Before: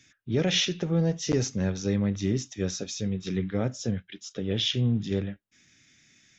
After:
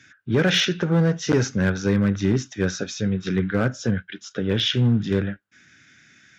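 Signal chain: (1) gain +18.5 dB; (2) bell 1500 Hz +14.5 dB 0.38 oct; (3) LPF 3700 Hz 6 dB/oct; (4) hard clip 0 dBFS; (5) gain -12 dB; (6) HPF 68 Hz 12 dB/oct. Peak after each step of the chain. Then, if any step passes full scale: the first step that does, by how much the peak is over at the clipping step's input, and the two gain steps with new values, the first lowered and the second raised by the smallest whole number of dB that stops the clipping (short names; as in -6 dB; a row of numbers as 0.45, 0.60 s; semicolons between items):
+5.0, +6.0, +5.0, 0.0, -12.0, -9.0 dBFS; step 1, 5.0 dB; step 1 +13.5 dB, step 5 -7 dB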